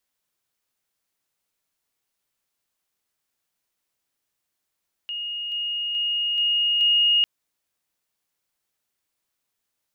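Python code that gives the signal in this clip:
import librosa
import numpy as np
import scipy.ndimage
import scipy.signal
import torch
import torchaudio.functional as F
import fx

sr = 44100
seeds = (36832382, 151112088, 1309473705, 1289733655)

y = fx.level_ladder(sr, hz=2860.0, from_db=-27.5, step_db=3.0, steps=5, dwell_s=0.43, gap_s=0.0)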